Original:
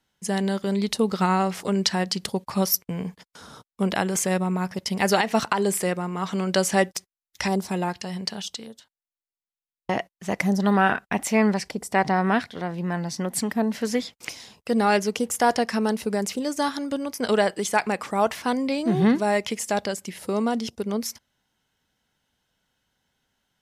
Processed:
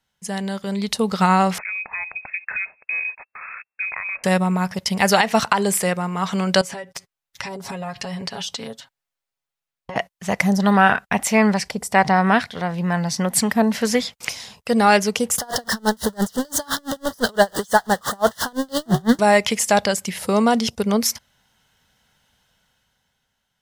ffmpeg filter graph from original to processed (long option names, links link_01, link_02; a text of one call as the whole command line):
ffmpeg -i in.wav -filter_complex "[0:a]asettb=1/sr,asplit=3[link_01][link_02][link_03];[link_01]atrim=end=1.584[link_04];[link_02]atrim=start=1.58:end=4.24,asetpts=PTS-STARTPTS,afade=type=in:duration=0.004:curve=qsin,afade=type=out:start_time=2.656:duration=0.004:curve=qsin,acompressor=threshold=-33dB:ratio=10:attack=3.2:release=140:knee=1:detection=peak,lowpass=frequency=2300:width_type=q:width=0.5098,lowpass=frequency=2300:width_type=q:width=0.6013,lowpass=frequency=2300:width_type=q:width=0.9,lowpass=frequency=2300:width_type=q:width=2.563,afreqshift=-2700[link_05];[link_03]atrim=start=4.236[link_06];[link_04][link_05]acrossfade=duration=0.004:curve1=hsin:curve2=qsin[link_07];[link_07][link_06]acrossfade=duration=0.004:curve1=qsin:curve2=hsin,asettb=1/sr,asplit=3[link_08][link_09][link_10];[link_08]atrim=end=6.614[link_11];[link_09]atrim=start=6.61:end=9.96,asetpts=PTS-STARTPTS,afade=type=in:duration=0.004:curve=qsin,afade=type=out:start_time=3.346:duration=0.004:curve=qsin,highshelf=frequency=4000:gain=-8,aecho=1:1:7.3:0.92,atrim=end_sample=147735,acompressor=threshold=-35dB:ratio=8:attack=3.2:release=140:knee=1:detection=peak[link_12];[link_10]atrim=start=9.956[link_13];[link_11][link_12]acrossfade=duration=0.004:curve1=hsin:curve2=qsin[link_14];[link_14][link_13]acrossfade=duration=0.004:curve1=qsin:curve2=hsin,asettb=1/sr,asplit=3[link_15][link_16][link_17];[link_15]atrim=end=15.384[link_18];[link_16]atrim=start=15.38:end=19.19,asetpts=PTS-STARTPTS,afade=type=in:duration=0.004:curve=qsin,afade=type=out:start_time=3.806:duration=0.004:curve=qsin,aeval=exprs='val(0)+0.5*0.075*sgn(val(0))':channel_layout=same,asuperstop=centerf=2400:order=8:qfactor=2.2,aeval=exprs='val(0)*pow(10,-34*(0.5-0.5*cos(2*PI*5.9*n/s))/20)':channel_layout=same[link_19];[link_17]atrim=start=19.186[link_20];[link_18][link_19]acrossfade=duration=0.004:curve1=hsin:curve2=qsin[link_21];[link_21][link_20]acrossfade=duration=0.004:curve1=qsin:curve2=hsin,equalizer=frequency=320:width_type=o:width=0.75:gain=-9.5,dynaudnorm=framelen=160:gausssize=13:maxgain=11.5dB" out.wav